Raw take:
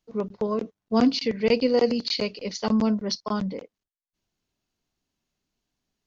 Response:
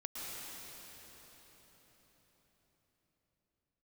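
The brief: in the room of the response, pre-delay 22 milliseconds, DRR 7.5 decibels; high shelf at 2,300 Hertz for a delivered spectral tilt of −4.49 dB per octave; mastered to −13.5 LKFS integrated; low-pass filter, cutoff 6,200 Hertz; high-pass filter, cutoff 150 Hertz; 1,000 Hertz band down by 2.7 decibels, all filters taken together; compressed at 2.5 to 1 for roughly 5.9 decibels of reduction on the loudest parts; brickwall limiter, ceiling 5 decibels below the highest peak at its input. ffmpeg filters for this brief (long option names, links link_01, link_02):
-filter_complex "[0:a]highpass=150,lowpass=6200,equalizer=frequency=1000:width_type=o:gain=-5,highshelf=frequency=2300:gain=8,acompressor=threshold=-25dB:ratio=2.5,alimiter=limit=-19dB:level=0:latency=1,asplit=2[link_01][link_02];[1:a]atrim=start_sample=2205,adelay=22[link_03];[link_02][link_03]afir=irnorm=-1:irlink=0,volume=-8.5dB[link_04];[link_01][link_04]amix=inputs=2:normalize=0,volume=16dB"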